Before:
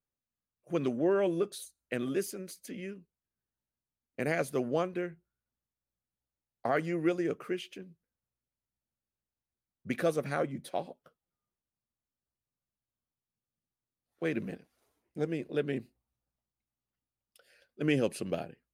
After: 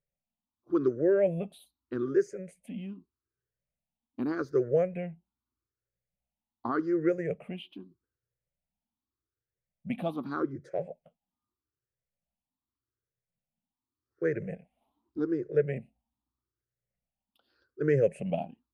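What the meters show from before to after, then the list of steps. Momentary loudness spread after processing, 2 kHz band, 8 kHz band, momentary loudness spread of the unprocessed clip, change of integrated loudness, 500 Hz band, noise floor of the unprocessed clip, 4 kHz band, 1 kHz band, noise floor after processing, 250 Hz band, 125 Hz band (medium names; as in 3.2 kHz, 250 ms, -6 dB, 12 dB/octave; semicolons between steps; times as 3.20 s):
17 LU, -3.5 dB, under -10 dB, 15 LU, +2.5 dB, +3.5 dB, under -85 dBFS, -7.5 dB, -1.5 dB, under -85 dBFS, +2.0 dB, +2.5 dB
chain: drifting ripple filter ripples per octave 0.52, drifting +0.83 Hz, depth 22 dB; low-pass 1 kHz 6 dB/octave; trim -2 dB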